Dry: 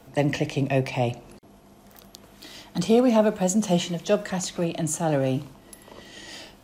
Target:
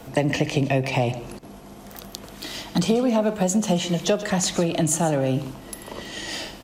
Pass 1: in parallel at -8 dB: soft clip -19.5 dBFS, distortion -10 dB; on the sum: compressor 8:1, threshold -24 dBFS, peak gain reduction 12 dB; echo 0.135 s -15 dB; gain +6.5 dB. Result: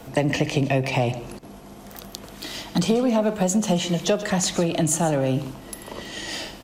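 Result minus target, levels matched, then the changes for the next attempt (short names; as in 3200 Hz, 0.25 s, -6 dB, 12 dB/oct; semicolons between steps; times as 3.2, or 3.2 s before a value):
soft clip: distortion +11 dB
change: soft clip -10.5 dBFS, distortion -21 dB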